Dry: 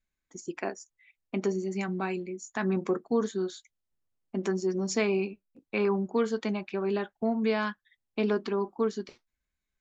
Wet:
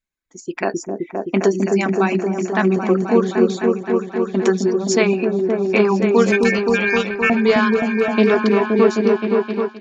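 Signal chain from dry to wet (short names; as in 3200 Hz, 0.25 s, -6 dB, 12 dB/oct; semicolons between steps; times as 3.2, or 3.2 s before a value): low shelf 93 Hz -6 dB; 6.32–7.3 ring modulator 2000 Hz; reverb removal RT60 1.6 s; 2.07–3.47 LPF 4500 Hz 12 dB/oct; repeats that get brighter 0.261 s, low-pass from 400 Hz, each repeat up 1 oct, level 0 dB; AGC gain up to 14.5 dB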